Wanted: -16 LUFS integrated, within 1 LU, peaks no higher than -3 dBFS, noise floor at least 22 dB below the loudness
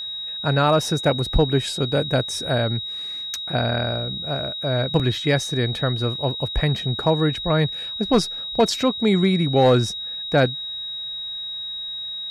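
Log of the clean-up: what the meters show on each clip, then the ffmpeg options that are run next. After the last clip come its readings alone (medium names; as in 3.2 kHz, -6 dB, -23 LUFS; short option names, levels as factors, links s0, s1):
steady tone 3.8 kHz; tone level -28 dBFS; loudness -22.0 LUFS; peak level -7.5 dBFS; loudness target -16.0 LUFS
-> -af "bandreject=f=3800:w=30"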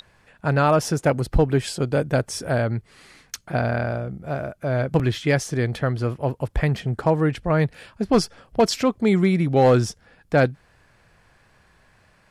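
steady tone not found; loudness -22.5 LUFS; peak level -8.5 dBFS; loudness target -16.0 LUFS
-> -af "volume=2.11,alimiter=limit=0.708:level=0:latency=1"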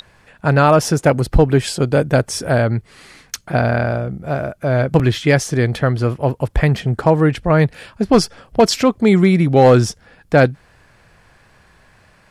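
loudness -16.0 LUFS; peak level -3.0 dBFS; noise floor -52 dBFS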